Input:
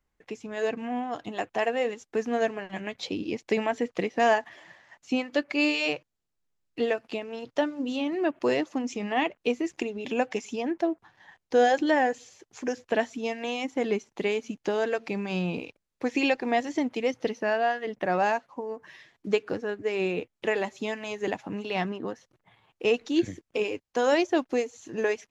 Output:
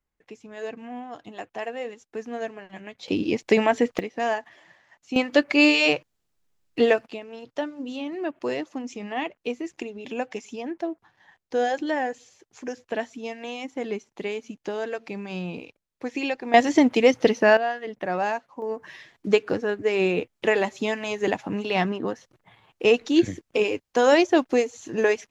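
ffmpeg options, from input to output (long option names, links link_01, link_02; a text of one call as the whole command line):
ffmpeg -i in.wav -af "asetnsamples=nb_out_samples=441:pad=0,asendcmd='3.08 volume volume 7dB;3.99 volume volume -3.5dB;5.16 volume volume 7.5dB;7.06 volume volume -3dB;16.54 volume volume 10dB;17.57 volume volume -1dB;18.62 volume volume 5.5dB',volume=-5.5dB" out.wav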